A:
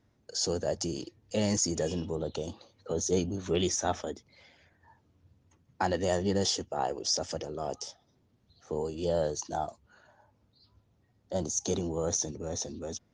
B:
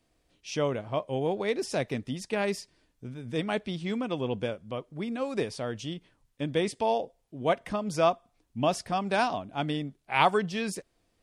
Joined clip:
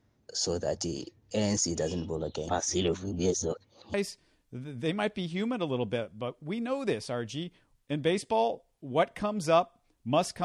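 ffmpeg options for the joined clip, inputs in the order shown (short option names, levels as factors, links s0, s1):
-filter_complex "[0:a]apad=whole_dur=10.44,atrim=end=10.44,asplit=2[s0][s1];[s0]atrim=end=2.492[s2];[s1]atrim=start=2.488:end=3.942,asetpts=PTS-STARTPTS,areverse[s3];[1:a]atrim=start=2.438:end=8.94[s4];[s2][s3]acrossfade=d=0.004:c1=hsin:c2=hsin[s5];[s5][s4]acrossfade=d=0.004:c1=hsin:c2=hsin"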